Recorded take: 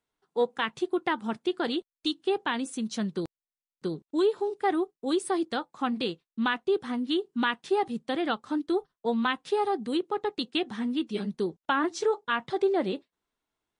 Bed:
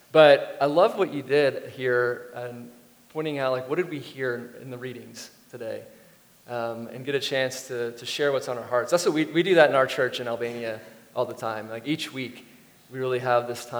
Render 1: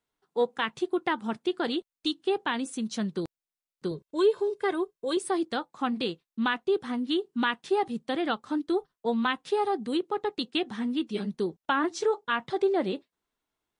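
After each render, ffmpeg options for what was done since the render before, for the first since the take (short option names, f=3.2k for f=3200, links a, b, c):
-filter_complex "[0:a]asettb=1/sr,asplit=3[a][b][c];[a]atrim=end=3.914[d];[b]atrim=start=3.91:end=5.17,asetpts=PTS-STARTPTS,afade=t=in:d=0.004:c=qsin,afade=t=out:st=1.256:d=0.004:c=qsin,aecho=1:1:1.9:0.65,atrim=end_sample=55566[e];[c]atrim=start=5.166[f];[d][e]acrossfade=d=0.004:c1=hsin:c2=qsin[g];[g][f]acrossfade=d=0.004:c1=qsin:c2=hsin"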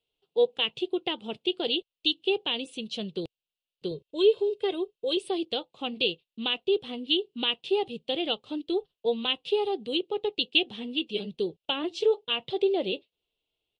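-af "firequalizer=gain_entry='entry(120,0);entry(230,-8);entry(460,4);entry(990,-11);entry(1700,-16);entry(2800,12);entry(6000,-10)':delay=0.05:min_phase=1"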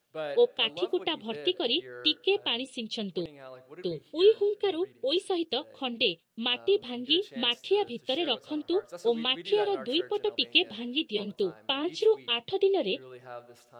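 -filter_complex "[1:a]volume=-21dB[a];[0:a][a]amix=inputs=2:normalize=0"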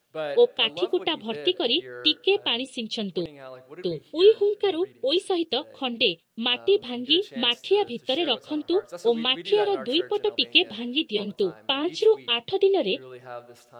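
-af "volume=4.5dB"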